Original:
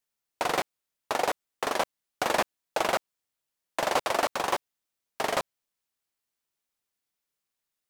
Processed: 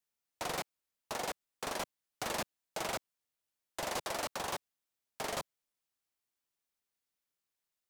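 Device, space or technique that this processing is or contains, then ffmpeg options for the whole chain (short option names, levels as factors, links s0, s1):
one-band saturation: -filter_complex "[0:a]acrossover=split=210|4200[s0][s1][s2];[s1]asoftclip=type=tanh:threshold=0.0299[s3];[s0][s3][s2]amix=inputs=3:normalize=0,volume=0.631"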